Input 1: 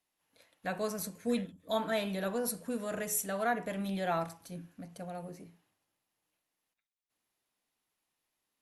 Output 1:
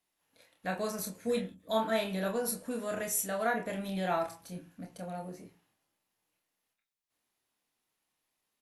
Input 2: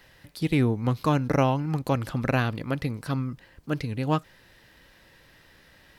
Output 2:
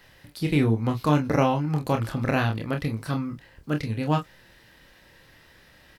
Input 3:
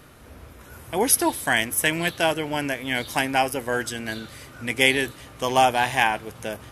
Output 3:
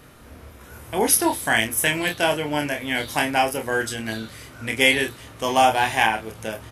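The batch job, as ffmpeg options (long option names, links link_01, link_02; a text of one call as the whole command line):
ffmpeg -i in.wav -af "aecho=1:1:27|44:0.562|0.237" out.wav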